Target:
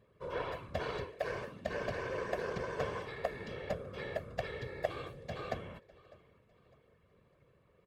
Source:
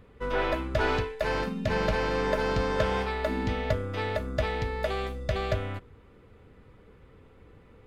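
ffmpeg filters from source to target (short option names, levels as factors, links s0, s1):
-filter_complex "[0:a]aecho=1:1:1.8:0.98,asplit=2[s0][s1];[s1]aecho=0:1:603|1206|1809:0.0891|0.0339|0.0129[s2];[s0][s2]amix=inputs=2:normalize=0,afftfilt=real='hypot(re,im)*cos(2*PI*random(0))':imag='hypot(re,im)*sin(2*PI*random(1))':win_size=512:overlap=0.75,highpass=f=130:p=1,aeval=exprs='0.211*(cos(1*acos(clip(val(0)/0.211,-1,1)))-cos(1*PI/2))+0.0335*(cos(3*acos(clip(val(0)/0.211,-1,1)))-cos(3*PI/2))':c=same,volume=0.708"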